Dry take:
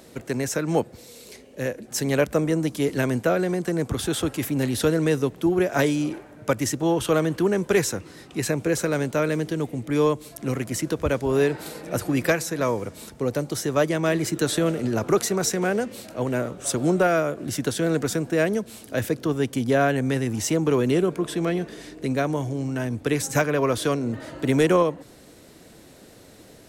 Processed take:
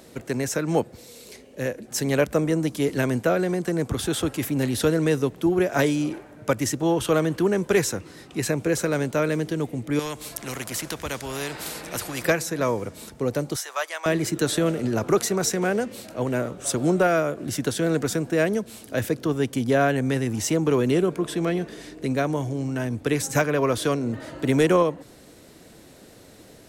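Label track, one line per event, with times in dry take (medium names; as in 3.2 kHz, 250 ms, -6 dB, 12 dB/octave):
9.990000	12.250000	spectrum-flattening compressor 2:1
13.560000	14.060000	high-pass 770 Hz 24 dB/octave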